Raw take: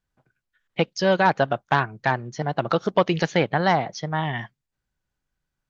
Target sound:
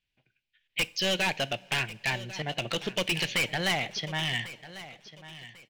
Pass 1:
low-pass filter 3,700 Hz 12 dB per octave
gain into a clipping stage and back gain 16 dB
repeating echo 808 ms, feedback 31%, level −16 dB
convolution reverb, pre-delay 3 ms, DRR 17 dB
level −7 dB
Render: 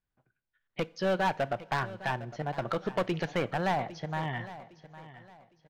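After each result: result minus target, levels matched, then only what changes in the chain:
4,000 Hz band −11.5 dB; echo 288 ms early
add after low-pass filter: high shelf with overshoot 1,800 Hz +12.5 dB, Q 3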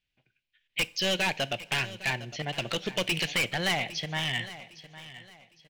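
echo 288 ms early
change: repeating echo 1,096 ms, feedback 31%, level −16 dB

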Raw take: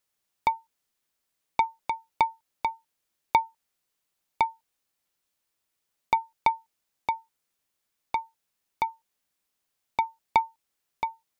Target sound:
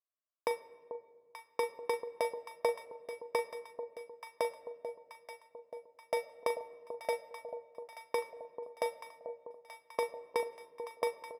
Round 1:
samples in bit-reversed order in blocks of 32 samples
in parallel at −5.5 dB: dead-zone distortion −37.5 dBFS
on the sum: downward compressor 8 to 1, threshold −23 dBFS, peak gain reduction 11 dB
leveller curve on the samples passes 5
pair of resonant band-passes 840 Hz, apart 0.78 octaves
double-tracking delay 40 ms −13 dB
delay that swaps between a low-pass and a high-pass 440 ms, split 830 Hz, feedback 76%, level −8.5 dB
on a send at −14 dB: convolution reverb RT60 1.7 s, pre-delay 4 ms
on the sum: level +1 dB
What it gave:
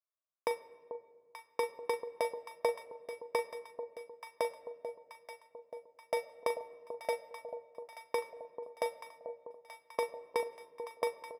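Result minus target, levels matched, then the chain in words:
dead-zone distortion: distortion +7 dB
samples in bit-reversed order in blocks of 32 samples
in parallel at −5.5 dB: dead-zone distortion −45.5 dBFS
on the sum: downward compressor 8 to 1, threshold −23 dBFS, peak gain reduction 11 dB
leveller curve on the samples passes 5
pair of resonant band-passes 840 Hz, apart 0.78 octaves
double-tracking delay 40 ms −13 dB
delay that swaps between a low-pass and a high-pass 440 ms, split 830 Hz, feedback 76%, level −8.5 dB
on a send at −14 dB: convolution reverb RT60 1.7 s, pre-delay 4 ms
on the sum: level +1 dB

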